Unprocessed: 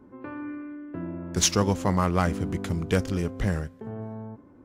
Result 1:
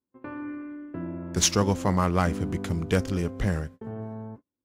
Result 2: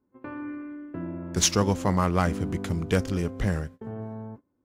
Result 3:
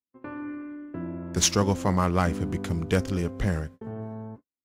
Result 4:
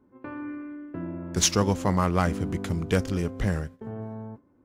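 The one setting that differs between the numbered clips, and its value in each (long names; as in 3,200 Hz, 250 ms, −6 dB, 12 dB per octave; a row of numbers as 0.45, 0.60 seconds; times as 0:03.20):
noise gate, range: −38, −22, −53, −10 decibels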